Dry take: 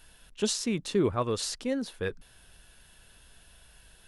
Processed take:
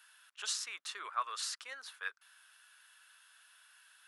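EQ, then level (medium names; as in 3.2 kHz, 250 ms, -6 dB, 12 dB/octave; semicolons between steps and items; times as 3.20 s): ladder high-pass 1.1 kHz, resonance 50%; +4.0 dB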